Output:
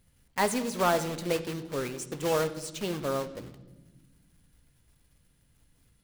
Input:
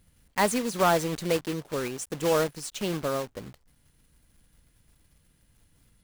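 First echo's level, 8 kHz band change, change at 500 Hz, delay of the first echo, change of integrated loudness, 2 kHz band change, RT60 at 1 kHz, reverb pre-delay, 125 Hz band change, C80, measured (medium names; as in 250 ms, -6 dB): no echo, -3.0 dB, -2.5 dB, no echo, -2.5 dB, -2.5 dB, 0.90 s, 8 ms, -2.5 dB, 15.5 dB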